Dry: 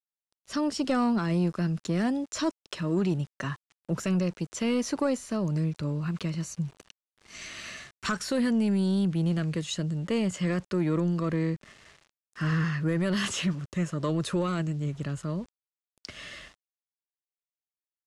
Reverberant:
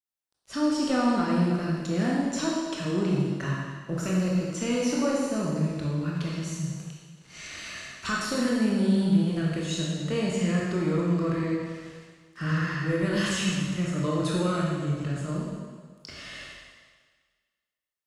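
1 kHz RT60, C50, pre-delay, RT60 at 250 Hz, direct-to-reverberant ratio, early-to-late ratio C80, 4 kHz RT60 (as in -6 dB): 1.6 s, -1.0 dB, 19 ms, 1.5 s, -4.5 dB, 1.5 dB, 1.5 s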